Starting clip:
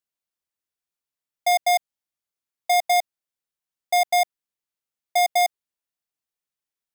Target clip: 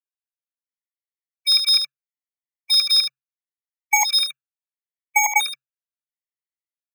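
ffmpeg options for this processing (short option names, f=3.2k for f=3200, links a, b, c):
-filter_complex "[0:a]highpass=1k,agate=range=-33dB:threshold=-22dB:ratio=3:detection=peak,equalizer=f=1.8k:w=2.4:g=12,acrossover=split=3000[a][b];[b]acompressor=threshold=-37dB:ratio=6[c];[a][c]amix=inputs=2:normalize=0,aeval=exprs='0.501*sin(PI/2*7.08*val(0)/0.501)':c=same,afreqshift=130,asplit=3[d][e][f];[d]afade=t=out:st=4.18:d=0.02[g];[e]asuperstop=centerf=4900:order=12:qfactor=1.8,afade=t=in:st=4.18:d=0.02,afade=t=out:st=5.45:d=0.02[h];[f]afade=t=in:st=5.45:d=0.02[i];[g][h][i]amix=inputs=3:normalize=0,asplit=2[j][k];[k]aecho=0:1:74:0.398[l];[j][l]amix=inputs=2:normalize=0,afftfilt=real='re*gt(sin(2*PI*0.74*pts/sr)*(1-2*mod(floor(b*sr/1024/580),2)),0)':imag='im*gt(sin(2*PI*0.74*pts/sr)*(1-2*mod(floor(b*sr/1024/580),2)),0)':win_size=1024:overlap=0.75,volume=-3dB"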